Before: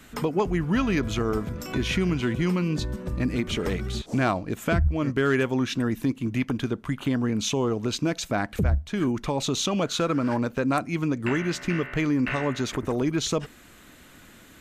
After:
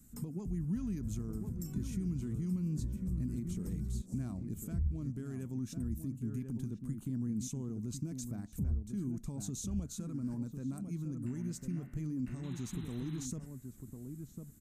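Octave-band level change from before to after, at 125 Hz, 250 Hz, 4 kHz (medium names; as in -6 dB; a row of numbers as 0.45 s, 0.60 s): -8.5 dB, -12.0 dB, -24.5 dB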